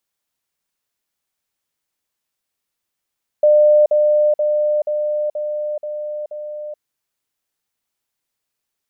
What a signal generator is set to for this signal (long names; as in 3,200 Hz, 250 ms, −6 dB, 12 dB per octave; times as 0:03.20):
level staircase 600 Hz −8 dBFS, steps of −3 dB, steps 7, 0.43 s 0.05 s